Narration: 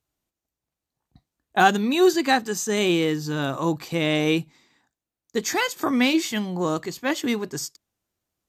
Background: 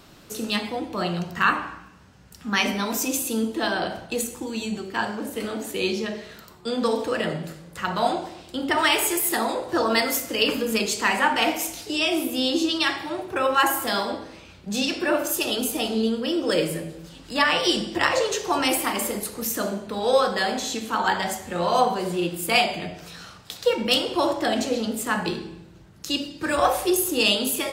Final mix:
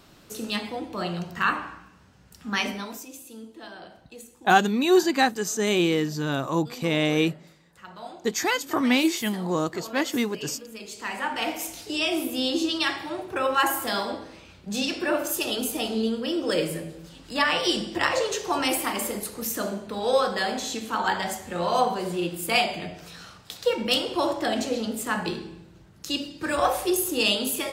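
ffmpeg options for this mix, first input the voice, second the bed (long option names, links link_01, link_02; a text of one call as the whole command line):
ffmpeg -i stem1.wav -i stem2.wav -filter_complex "[0:a]adelay=2900,volume=-1dB[link_01];[1:a]volume=11.5dB,afade=type=out:start_time=2.56:duration=0.5:silence=0.199526,afade=type=in:start_time=10.77:duration=1.19:silence=0.177828[link_02];[link_01][link_02]amix=inputs=2:normalize=0" out.wav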